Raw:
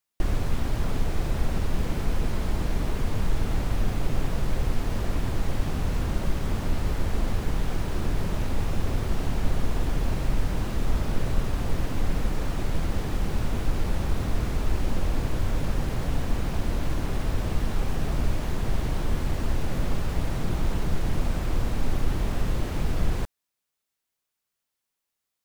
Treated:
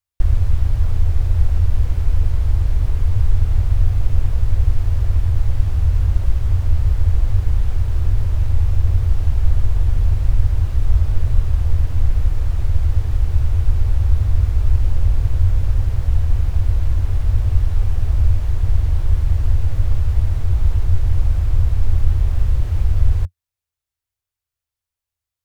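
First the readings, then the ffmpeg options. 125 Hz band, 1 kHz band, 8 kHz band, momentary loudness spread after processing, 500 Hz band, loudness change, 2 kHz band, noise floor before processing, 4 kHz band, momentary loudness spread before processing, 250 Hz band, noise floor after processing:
+12.0 dB, -5.0 dB, n/a, 2 LU, -5.5 dB, +10.0 dB, -4.5 dB, -83 dBFS, -4.5 dB, 1 LU, -7.0 dB, under -85 dBFS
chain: -af "lowshelf=f=130:t=q:w=3:g=13,volume=-4.5dB"

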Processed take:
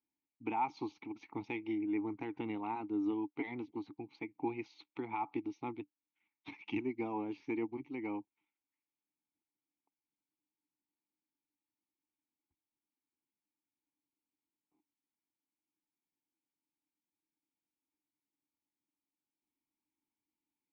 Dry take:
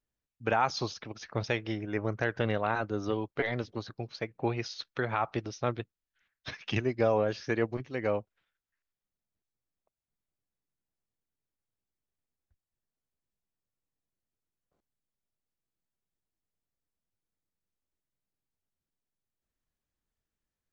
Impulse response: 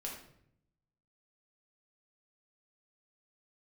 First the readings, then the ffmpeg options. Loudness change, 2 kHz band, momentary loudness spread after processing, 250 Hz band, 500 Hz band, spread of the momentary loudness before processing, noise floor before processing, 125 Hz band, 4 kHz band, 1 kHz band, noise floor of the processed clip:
-7.5 dB, -12.5 dB, 11 LU, -1.5 dB, -12.5 dB, 11 LU, under -85 dBFS, -17.5 dB, -17.5 dB, -6.5 dB, under -85 dBFS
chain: -filter_complex "[0:a]asplit=2[a][b];[b]acompressor=threshold=-42dB:ratio=6,volume=0.5dB[c];[a][c]amix=inputs=2:normalize=0,asplit=3[d][e][f];[d]bandpass=f=300:t=q:w=8,volume=0dB[g];[e]bandpass=f=870:t=q:w=8,volume=-6dB[h];[f]bandpass=f=2.24k:t=q:w=8,volume=-9dB[i];[g][h][i]amix=inputs=3:normalize=0,bandreject=f=5.1k:w=8.3,volume=3.5dB"

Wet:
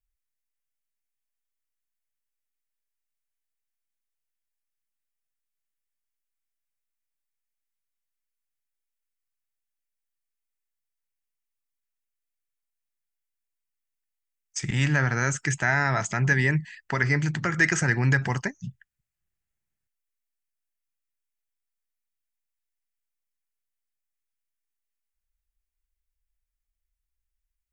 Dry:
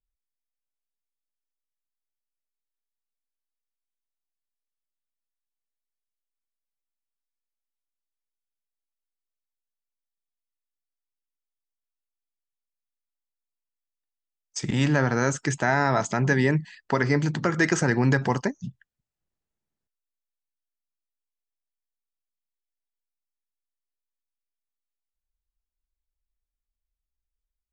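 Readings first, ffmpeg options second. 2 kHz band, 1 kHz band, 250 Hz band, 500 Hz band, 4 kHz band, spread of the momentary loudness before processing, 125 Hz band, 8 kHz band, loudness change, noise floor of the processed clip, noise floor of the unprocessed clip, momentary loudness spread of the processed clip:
+3.0 dB, -3.5 dB, -5.0 dB, -7.0 dB, -1.0 dB, 9 LU, +0.5 dB, +1.5 dB, -0.5 dB, -84 dBFS, under -85 dBFS, 11 LU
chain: -af "equalizer=f=250:t=o:w=1:g=-9,equalizer=f=500:t=o:w=1:g=-9,equalizer=f=1k:t=o:w=1:g=-7,equalizer=f=2k:t=o:w=1:g=4,equalizer=f=4k:t=o:w=1:g=-7,volume=3.5dB"

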